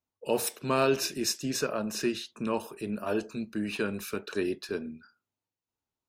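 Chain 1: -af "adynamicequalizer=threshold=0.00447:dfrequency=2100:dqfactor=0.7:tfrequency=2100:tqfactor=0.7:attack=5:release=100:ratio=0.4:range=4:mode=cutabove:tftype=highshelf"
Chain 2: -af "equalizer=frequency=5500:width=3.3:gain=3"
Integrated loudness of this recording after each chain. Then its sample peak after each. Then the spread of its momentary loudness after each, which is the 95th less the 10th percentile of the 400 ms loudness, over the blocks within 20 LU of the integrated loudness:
−32.0, −31.0 LKFS; −14.5, −14.0 dBFS; 9, 10 LU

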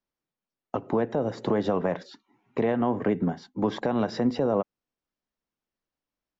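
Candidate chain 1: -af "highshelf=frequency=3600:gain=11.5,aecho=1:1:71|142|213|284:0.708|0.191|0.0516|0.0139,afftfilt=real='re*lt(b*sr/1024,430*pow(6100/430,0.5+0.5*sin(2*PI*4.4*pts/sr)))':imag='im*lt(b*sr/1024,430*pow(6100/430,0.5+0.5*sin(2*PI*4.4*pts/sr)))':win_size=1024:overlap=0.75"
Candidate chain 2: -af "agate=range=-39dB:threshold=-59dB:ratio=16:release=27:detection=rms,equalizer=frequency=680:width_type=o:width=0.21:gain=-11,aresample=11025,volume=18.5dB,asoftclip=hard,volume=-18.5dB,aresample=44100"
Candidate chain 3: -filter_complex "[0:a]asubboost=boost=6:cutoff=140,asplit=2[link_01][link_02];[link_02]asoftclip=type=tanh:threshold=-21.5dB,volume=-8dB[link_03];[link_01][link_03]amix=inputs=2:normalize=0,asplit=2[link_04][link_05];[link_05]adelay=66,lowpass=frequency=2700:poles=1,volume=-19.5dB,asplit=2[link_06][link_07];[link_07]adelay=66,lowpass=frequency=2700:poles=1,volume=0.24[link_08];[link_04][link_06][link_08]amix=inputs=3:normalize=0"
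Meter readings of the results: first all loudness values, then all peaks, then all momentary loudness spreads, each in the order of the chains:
−26.0, −28.5, −25.5 LKFS; −11.0, −18.0, −11.0 dBFS; 9, 11, 11 LU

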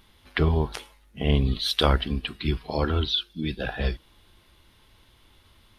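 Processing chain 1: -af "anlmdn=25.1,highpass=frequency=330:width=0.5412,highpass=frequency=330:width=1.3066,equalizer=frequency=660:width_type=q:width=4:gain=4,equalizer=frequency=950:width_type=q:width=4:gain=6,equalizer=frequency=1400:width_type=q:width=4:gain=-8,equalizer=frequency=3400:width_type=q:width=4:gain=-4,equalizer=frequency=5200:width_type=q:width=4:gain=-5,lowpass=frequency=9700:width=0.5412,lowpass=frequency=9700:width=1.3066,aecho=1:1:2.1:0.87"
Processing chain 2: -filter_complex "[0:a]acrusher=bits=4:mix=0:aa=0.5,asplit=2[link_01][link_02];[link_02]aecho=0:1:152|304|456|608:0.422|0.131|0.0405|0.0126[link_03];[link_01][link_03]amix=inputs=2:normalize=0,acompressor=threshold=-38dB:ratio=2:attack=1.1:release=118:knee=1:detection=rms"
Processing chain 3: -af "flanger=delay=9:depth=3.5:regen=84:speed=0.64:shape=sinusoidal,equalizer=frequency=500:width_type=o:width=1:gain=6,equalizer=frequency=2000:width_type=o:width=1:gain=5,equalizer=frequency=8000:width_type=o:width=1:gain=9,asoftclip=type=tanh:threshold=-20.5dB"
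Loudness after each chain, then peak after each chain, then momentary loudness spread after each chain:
−27.5, −36.5, −30.5 LKFS; −3.5, −19.5, −20.5 dBFS; 11, 10, 8 LU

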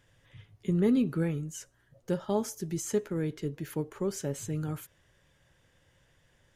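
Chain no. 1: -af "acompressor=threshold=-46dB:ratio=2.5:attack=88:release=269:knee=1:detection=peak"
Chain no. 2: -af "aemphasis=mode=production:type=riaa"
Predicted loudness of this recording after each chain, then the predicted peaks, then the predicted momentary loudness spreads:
−42.0, −31.5 LKFS; −24.0, −13.5 dBFS; 13, 13 LU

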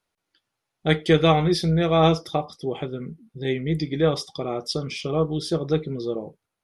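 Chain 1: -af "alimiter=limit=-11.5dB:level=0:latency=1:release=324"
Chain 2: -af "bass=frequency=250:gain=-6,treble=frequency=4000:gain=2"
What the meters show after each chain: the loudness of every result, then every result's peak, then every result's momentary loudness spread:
−25.5, −25.0 LKFS; −11.5, −4.5 dBFS; 10, 13 LU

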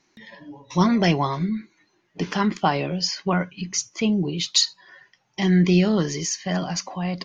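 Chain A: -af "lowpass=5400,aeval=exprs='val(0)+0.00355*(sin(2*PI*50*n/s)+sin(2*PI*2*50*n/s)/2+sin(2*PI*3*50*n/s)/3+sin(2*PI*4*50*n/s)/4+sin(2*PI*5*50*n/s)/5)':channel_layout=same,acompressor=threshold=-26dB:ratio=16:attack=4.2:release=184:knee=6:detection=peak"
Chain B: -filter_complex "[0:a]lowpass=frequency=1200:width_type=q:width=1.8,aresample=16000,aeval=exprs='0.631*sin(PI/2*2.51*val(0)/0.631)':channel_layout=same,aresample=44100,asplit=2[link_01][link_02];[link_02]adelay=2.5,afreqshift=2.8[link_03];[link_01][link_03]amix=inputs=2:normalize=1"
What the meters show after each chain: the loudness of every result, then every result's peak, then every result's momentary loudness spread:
−32.5, −16.5 LKFS; −15.5, −2.0 dBFS; 12, 14 LU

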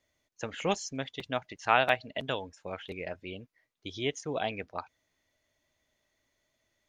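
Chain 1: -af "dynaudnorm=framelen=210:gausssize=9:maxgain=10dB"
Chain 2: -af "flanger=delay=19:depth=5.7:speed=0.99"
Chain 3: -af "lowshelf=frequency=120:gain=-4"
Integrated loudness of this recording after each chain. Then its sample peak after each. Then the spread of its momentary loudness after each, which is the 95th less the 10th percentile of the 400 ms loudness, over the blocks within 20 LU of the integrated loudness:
−26.5, −36.0, −33.0 LKFS; −1.5, −12.0, −8.0 dBFS; 16, 17, 16 LU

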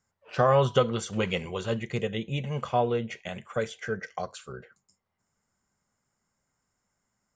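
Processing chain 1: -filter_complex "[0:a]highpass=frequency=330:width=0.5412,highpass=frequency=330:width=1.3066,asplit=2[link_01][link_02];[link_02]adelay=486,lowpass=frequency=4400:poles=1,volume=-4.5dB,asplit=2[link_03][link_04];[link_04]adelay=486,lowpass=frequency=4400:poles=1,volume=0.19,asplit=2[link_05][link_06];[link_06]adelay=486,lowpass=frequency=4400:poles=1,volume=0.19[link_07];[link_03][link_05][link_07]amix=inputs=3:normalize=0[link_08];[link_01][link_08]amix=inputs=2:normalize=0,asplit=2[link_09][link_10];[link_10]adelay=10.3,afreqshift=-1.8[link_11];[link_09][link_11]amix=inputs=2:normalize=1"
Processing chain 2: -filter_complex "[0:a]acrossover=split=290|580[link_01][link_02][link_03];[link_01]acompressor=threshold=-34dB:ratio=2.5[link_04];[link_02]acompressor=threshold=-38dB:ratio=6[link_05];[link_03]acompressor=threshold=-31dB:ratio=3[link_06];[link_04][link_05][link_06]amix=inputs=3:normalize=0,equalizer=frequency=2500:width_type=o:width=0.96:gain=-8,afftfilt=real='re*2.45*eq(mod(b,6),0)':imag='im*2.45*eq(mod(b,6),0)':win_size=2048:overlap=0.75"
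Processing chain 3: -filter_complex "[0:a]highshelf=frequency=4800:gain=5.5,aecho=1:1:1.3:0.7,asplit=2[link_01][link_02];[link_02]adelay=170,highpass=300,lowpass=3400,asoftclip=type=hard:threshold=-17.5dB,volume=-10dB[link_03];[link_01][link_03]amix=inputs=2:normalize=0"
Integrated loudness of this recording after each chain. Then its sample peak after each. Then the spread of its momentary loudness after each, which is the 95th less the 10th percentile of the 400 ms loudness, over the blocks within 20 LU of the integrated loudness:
−31.5, −36.5, −27.5 LKFS; −11.5, −14.0, −8.0 dBFS; 17, 12, 13 LU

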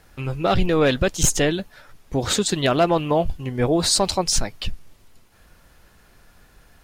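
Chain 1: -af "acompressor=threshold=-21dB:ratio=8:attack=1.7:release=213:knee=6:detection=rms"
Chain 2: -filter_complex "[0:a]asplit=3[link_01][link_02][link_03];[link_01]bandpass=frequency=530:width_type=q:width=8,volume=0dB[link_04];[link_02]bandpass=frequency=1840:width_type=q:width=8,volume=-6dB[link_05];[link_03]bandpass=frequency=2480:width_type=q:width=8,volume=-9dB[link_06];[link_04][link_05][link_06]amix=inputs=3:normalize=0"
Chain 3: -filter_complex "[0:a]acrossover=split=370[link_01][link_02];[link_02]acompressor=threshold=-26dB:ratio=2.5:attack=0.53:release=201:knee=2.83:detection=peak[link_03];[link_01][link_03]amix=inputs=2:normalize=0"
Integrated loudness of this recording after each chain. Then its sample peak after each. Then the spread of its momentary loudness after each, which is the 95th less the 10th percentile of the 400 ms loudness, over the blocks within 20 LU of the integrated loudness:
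−28.5, −31.0, −25.0 LKFS; −15.0, −15.0, −9.0 dBFS; 8, 16, 8 LU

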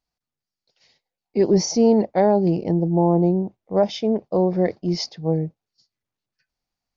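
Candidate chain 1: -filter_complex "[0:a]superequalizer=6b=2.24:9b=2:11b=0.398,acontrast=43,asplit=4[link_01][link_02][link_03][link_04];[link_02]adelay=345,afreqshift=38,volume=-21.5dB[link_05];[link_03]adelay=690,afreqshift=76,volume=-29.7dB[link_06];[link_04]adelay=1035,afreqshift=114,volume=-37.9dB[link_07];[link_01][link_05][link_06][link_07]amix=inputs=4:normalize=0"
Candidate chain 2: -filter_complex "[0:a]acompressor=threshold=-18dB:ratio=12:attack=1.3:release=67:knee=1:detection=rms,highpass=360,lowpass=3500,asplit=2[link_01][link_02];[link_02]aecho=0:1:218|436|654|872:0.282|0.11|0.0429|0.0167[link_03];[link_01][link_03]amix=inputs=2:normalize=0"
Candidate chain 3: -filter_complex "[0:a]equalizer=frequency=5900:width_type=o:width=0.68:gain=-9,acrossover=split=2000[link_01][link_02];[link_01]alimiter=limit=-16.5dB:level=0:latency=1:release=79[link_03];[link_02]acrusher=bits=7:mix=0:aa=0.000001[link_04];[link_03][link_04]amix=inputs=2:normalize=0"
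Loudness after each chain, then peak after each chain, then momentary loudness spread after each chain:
−13.5, −30.0, −26.5 LKFS; −1.0, −15.0, −15.0 dBFS; 8, 7, 5 LU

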